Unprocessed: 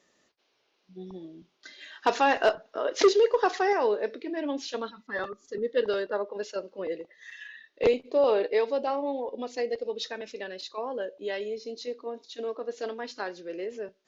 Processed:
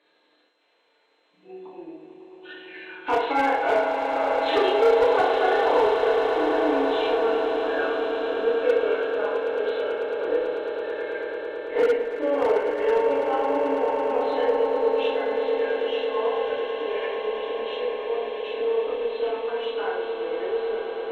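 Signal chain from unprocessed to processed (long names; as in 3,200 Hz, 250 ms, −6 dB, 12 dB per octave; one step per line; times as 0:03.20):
hearing-aid frequency compression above 1,400 Hz 1.5 to 1
high-pass filter 370 Hz 12 dB per octave
in parallel at −2 dB: downward compressor, threshold −39 dBFS, peak gain reduction 20.5 dB
on the sum: time stretch by overlap-add 1.5×, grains 157 ms
feedback delay network reverb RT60 0.82 s, low-frequency decay 0.7×, high-frequency decay 0.75×, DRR −7 dB
harmonic generator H 6 −36 dB, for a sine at −10 dBFS
on a send: echo that builds up and dies away 110 ms, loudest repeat 8, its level −11.5 dB
on the sum: level −5 dB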